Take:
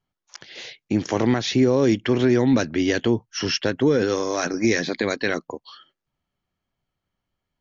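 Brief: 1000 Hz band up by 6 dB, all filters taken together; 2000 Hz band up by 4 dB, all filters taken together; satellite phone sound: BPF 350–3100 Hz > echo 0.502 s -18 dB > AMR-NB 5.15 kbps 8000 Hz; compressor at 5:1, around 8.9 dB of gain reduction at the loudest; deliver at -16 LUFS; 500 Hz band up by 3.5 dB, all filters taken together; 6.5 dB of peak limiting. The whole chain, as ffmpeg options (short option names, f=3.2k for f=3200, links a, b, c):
-af "equalizer=f=500:t=o:g=5,equalizer=f=1k:t=o:g=5.5,equalizer=f=2k:t=o:g=3.5,acompressor=threshold=-21dB:ratio=5,alimiter=limit=-16dB:level=0:latency=1,highpass=350,lowpass=3.1k,aecho=1:1:502:0.126,volume=15dB" -ar 8000 -c:a libopencore_amrnb -b:a 5150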